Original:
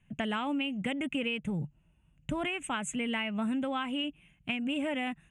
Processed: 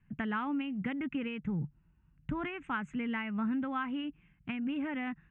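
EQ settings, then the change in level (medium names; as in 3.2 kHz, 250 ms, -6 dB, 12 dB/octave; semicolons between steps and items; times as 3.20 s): low-pass 4.8 kHz 24 dB/octave; peaking EQ 610 Hz -12.5 dB 0.76 oct; resonant high shelf 2.2 kHz -10.5 dB, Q 1.5; 0.0 dB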